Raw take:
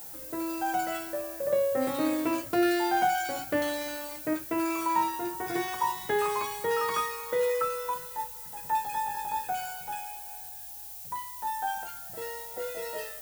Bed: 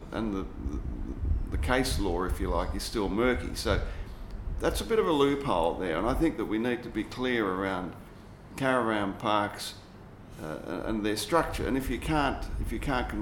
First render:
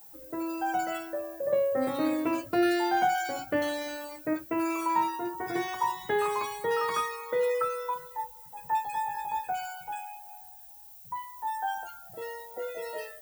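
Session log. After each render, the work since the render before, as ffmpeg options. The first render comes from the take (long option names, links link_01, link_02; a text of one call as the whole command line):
ffmpeg -i in.wav -af "afftdn=noise_reduction=12:noise_floor=-43" out.wav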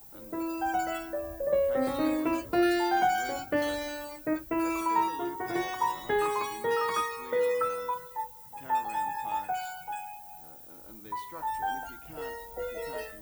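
ffmpeg -i in.wav -i bed.wav -filter_complex "[1:a]volume=-20.5dB[link_01];[0:a][link_01]amix=inputs=2:normalize=0" out.wav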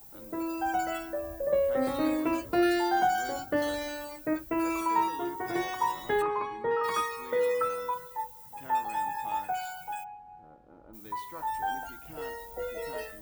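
ffmpeg -i in.wav -filter_complex "[0:a]asettb=1/sr,asplit=3[link_01][link_02][link_03];[link_01]atrim=end=2.814[link_04];[link_02]atrim=start=2.81:end=3.74,asetpts=PTS-STARTPTS,afade=type=in:duration=0.004:curve=qsin,afade=type=out:start_time=0.926:duration=0.004:curve=qsin,equalizer=frequency=2400:width=4.9:gain=-11.5[link_05];[link_03]atrim=start=3.736[link_06];[link_04][link_05]acrossfade=duration=0.004:curve1=hsin:curve2=qsin[link_07];[link_07][link_06]acrossfade=duration=0.004:curve1=qsin:curve2=hsin,asplit=3[link_08][link_09][link_10];[link_08]afade=type=out:start_time=6.21:duration=0.02[link_11];[link_09]lowpass=1800,afade=type=in:start_time=6.21:duration=0.02,afade=type=out:start_time=6.83:duration=0.02[link_12];[link_10]afade=type=in:start_time=6.83:duration=0.02[link_13];[link_11][link_12][link_13]amix=inputs=3:normalize=0,asplit=3[link_14][link_15][link_16];[link_14]afade=type=out:start_time=10.03:duration=0.02[link_17];[link_15]lowpass=1300,afade=type=in:start_time=10.03:duration=0.02,afade=type=out:start_time=10.93:duration=0.02[link_18];[link_16]afade=type=in:start_time=10.93:duration=0.02[link_19];[link_17][link_18][link_19]amix=inputs=3:normalize=0" out.wav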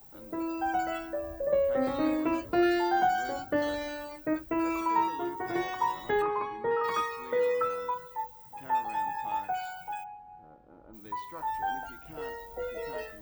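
ffmpeg -i in.wav -af "equalizer=frequency=12000:width_type=o:width=1.3:gain=-12.5" out.wav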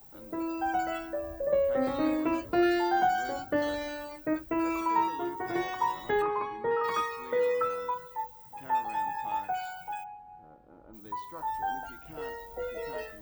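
ffmpeg -i in.wav -filter_complex "[0:a]asettb=1/sr,asplit=3[link_01][link_02][link_03];[link_01]atrim=end=11.004[link_04];[link_02]atrim=start=11:end=11.84,asetpts=PTS-STARTPTS,afade=type=in:duration=0.004:curve=qsin,afade=type=out:start_time=0.836:duration=0.004:curve=qsin,equalizer=frequency=2300:width=1.9:gain=-7[link_05];[link_03]atrim=start=11.836[link_06];[link_04][link_05]acrossfade=duration=0.004:curve1=hsin:curve2=qsin[link_07];[link_07][link_06]acrossfade=duration=0.004:curve1=qsin:curve2=hsin" out.wav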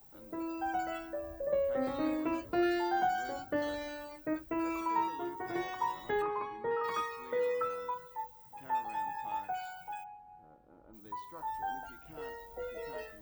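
ffmpeg -i in.wav -af "volume=-5dB" out.wav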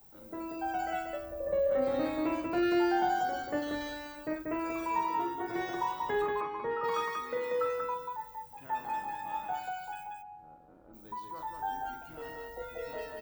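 ffmpeg -i in.wav -af "aecho=1:1:43.73|186.6:0.447|0.708" out.wav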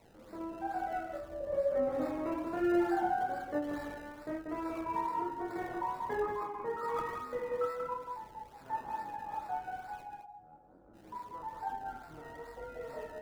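ffmpeg -i in.wav -filter_complex "[0:a]flanger=delay=20:depth=7.2:speed=1.1,acrossover=split=160|530|2200[link_01][link_02][link_03][link_04];[link_04]acrusher=samples=27:mix=1:aa=0.000001:lfo=1:lforange=27:lforate=2.3[link_05];[link_01][link_02][link_03][link_05]amix=inputs=4:normalize=0" out.wav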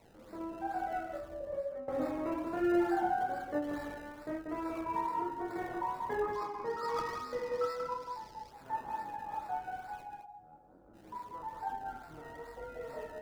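ffmpeg -i in.wav -filter_complex "[0:a]asettb=1/sr,asplit=3[link_01][link_02][link_03];[link_01]atrim=end=6.334[link_04];[link_02]atrim=start=6.33:end=8.51,asetpts=PTS-STARTPTS,afade=type=in:duration=0.004:curve=qsin,afade=type=out:start_time=2.176:duration=0.004:curve=qsin,equalizer=frequency=5000:width_type=o:width=0.69:gain=14[link_05];[link_03]atrim=start=8.506[link_06];[link_04][link_05]acrossfade=duration=0.004:curve1=hsin:curve2=qsin[link_07];[link_07][link_06]acrossfade=duration=0.004:curve1=qsin:curve2=hsin,asplit=2[link_08][link_09];[link_08]atrim=end=1.88,asetpts=PTS-STARTPTS,afade=type=out:start_time=1.26:duration=0.62:silence=0.133352[link_10];[link_09]atrim=start=1.88,asetpts=PTS-STARTPTS,afade=type=in:duration=0.004:curve=hsin:silence=0.133352[link_11];[link_10][link_11]concat=n=2:v=0:a=1" out.wav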